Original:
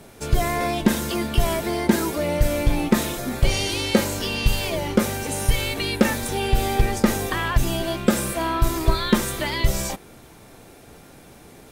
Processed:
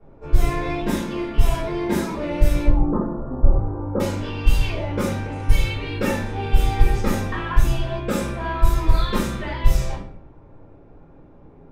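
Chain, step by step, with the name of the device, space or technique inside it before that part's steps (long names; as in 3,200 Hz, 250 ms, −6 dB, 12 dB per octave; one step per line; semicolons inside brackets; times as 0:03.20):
cassette deck with a dynamic noise filter (white noise bed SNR 31 dB; low-pass that shuts in the quiet parts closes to 810 Hz, open at −13.5 dBFS)
0:02.65–0:04.00: Butterworth low-pass 1,300 Hz 48 dB per octave
rectangular room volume 62 cubic metres, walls mixed, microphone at 3.4 metres
level −16.5 dB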